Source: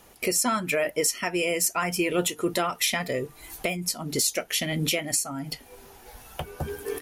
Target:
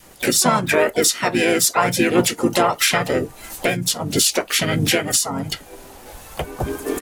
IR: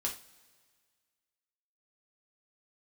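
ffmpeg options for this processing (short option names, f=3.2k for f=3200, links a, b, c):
-filter_complex "[0:a]adynamicequalizer=threshold=0.00631:dfrequency=830:dqfactor=2.3:tfrequency=830:tqfactor=2.3:attack=5:release=100:ratio=0.375:range=2.5:mode=boostabove:tftype=bell,asplit=4[a][b][c][d];[b]asetrate=29433,aresample=44100,atempo=1.49831,volume=-4dB[e];[c]asetrate=35002,aresample=44100,atempo=1.25992,volume=-7dB[f];[d]asetrate=66075,aresample=44100,atempo=0.66742,volume=-14dB[g];[a][e][f][g]amix=inputs=4:normalize=0,volume=5.5dB"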